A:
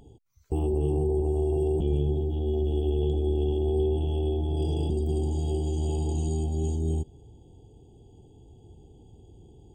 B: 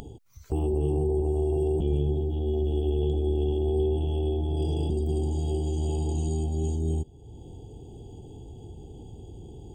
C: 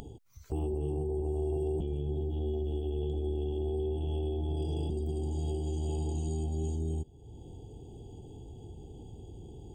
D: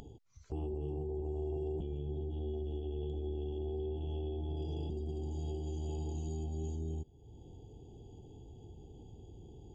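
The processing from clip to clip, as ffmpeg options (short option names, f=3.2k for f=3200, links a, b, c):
-af "acompressor=mode=upward:threshold=-33dB:ratio=2.5"
-af "alimiter=limit=-21dB:level=0:latency=1:release=332,volume=-3.5dB"
-af "aresample=16000,aresample=44100,volume=-5.5dB"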